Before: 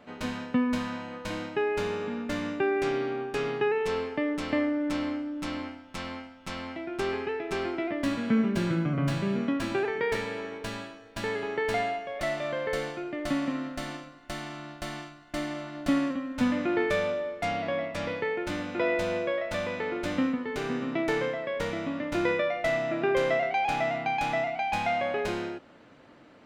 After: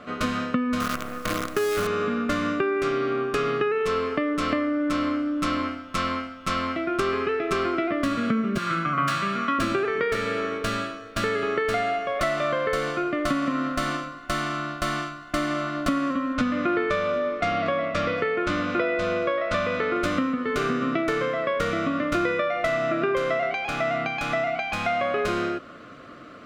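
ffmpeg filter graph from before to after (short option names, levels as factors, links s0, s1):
-filter_complex "[0:a]asettb=1/sr,asplit=3[s0][s1][s2];[s0]atrim=end=0.804[s3];[s1]atrim=start=0.8:end=1.87,asetpts=PTS-STARTPTS,afade=t=in:d=0.004:c=qsin,afade=t=out:st=1.066:d=0.004:c=qsin,lowpass=3000,highshelf=f=2100:g=-5,acrusher=bits=6:dc=4:mix=0:aa=0.000001[s4];[s2]atrim=start=1.866[s5];[s3][s4]acrossfade=d=0.004:c1=hsin:c2=qsin[s6];[s6][s5]acrossfade=d=0.004:c1=qsin:c2=hsin,asettb=1/sr,asplit=3[s7][s8][s9];[s7]atrim=end=8.584[s10];[s8]atrim=start=8.58:end=9.59,asetpts=PTS-STARTPTS,afade=t=in:d=0.004:c=qsin,afade=t=out:st=1.006:d=0.004:c=qsin,highpass=150,lowshelf=f=710:t=q:w=1.5:g=-9.5[s11];[s9]atrim=start=9.586[s12];[s10][s11]acrossfade=d=0.004:c1=hsin:c2=qsin[s13];[s13][s12]acrossfade=d=0.004:c1=qsin:c2=hsin,asettb=1/sr,asplit=3[s14][s15][s16];[s14]atrim=end=16.344[s17];[s15]atrim=start=16.34:end=19.96,asetpts=PTS-STARTPTS,afade=t=in:d=0.004:c=qsin,afade=t=out:st=3.616:d=0.004:c=qsin,lowpass=6000,aecho=1:1:753:0.0891,atrim=end_sample=159642[s18];[s16]atrim=start=19.956[s19];[s17][s18]acrossfade=d=0.004:c1=hsin:c2=qsin[s20];[s20][s19]acrossfade=d=0.004:c1=qsin:c2=hsin,acompressor=threshold=0.0282:ratio=6,superequalizer=9b=0.316:10b=2.51,volume=2.82"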